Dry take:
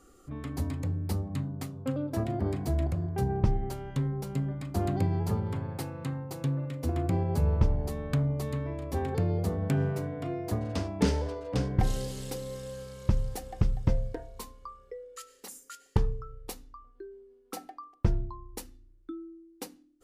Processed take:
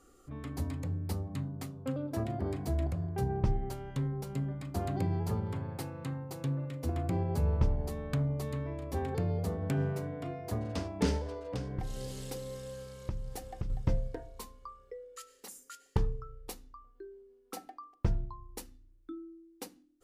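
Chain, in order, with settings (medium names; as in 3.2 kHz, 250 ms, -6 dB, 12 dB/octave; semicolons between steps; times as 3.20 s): hum notches 50/100/150/200/250/300/350 Hz; 11.17–13.70 s: compression 6:1, threshold -30 dBFS, peak gain reduction 9.5 dB; trim -3 dB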